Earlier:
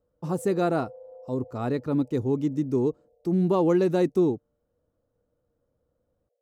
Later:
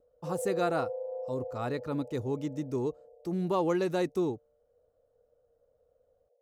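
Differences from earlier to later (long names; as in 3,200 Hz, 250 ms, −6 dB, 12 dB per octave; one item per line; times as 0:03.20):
speech: add parametric band 230 Hz −9.5 dB 2.5 octaves
background +8.5 dB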